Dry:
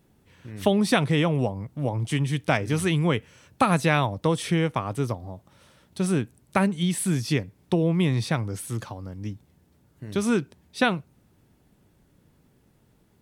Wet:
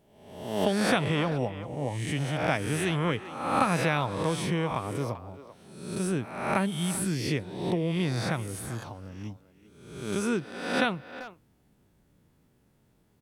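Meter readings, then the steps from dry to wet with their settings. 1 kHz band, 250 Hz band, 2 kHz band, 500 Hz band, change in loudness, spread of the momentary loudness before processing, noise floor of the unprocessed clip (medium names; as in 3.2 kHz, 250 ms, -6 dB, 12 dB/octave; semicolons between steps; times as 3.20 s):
-2.0 dB, -5.0 dB, -2.5 dB, -3.0 dB, -4.0 dB, 14 LU, -63 dBFS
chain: reverse spectral sustain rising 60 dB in 0.87 s; speakerphone echo 390 ms, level -13 dB; trim -6.5 dB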